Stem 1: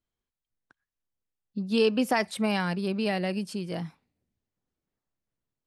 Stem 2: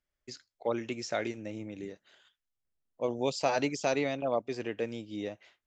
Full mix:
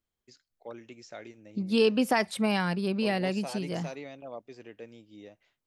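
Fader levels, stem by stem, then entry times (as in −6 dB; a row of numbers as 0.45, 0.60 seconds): 0.0, −11.5 decibels; 0.00, 0.00 seconds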